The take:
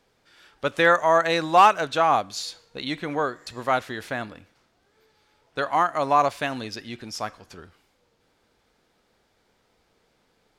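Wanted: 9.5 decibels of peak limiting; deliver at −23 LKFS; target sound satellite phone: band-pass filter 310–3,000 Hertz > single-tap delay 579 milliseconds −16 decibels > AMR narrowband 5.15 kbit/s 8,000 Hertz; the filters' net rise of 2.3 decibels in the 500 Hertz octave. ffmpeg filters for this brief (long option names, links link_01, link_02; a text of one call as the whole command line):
ffmpeg -i in.wav -af "equalizer=frequency=500:width_type=o:gain=3.5,alimiter=limit=-14dB:level=0:latency=1,highpass=310,lowpass=3000,aecho=1:1:579:0.158,volume=5.5dB" -ar 8000 -c:a libopencore_amrnb -b:a 5150 out.amr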